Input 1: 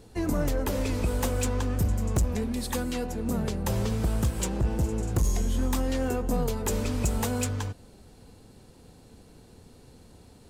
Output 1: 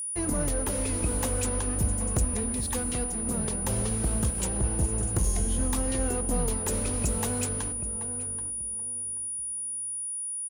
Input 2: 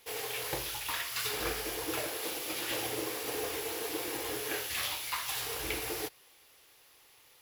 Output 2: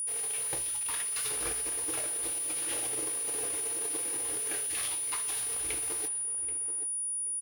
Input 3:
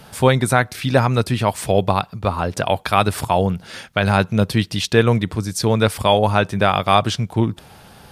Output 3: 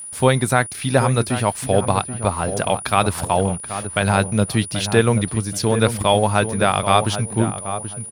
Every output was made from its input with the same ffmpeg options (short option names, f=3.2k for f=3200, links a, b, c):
-filter_complex "[0:a]aeval=exprs='sgn(val(0))*max(abs(val(0))-0.00944,0)':c=same,asplit=2[a][b];[b]adelay=781,lowpass=f=1.3k:p=1,volume=-9dB,asplit=2[c][d];[d]adelay=781,lowpass=f=1.3k:p=1,volume=0.27,asplit=2[e][f];[f]adelay=781,lowpass=f=1.3k:p=1,volume=0.27[g];[a][c][e][g]amix=inputs=4:normalize=0,aeval=exprs='val(0)+0.0316*sin(2*PI*9700*n/s)':c=same,volume=-1dB"